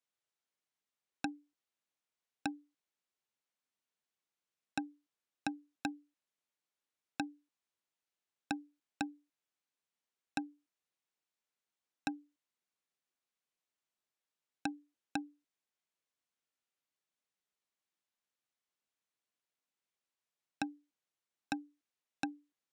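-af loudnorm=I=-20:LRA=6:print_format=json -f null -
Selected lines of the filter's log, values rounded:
"input_i" : "-43.7",
"input_tp" : "-18.6",
"input_lra" : "4.8",
"input_thresh" : "-54.4",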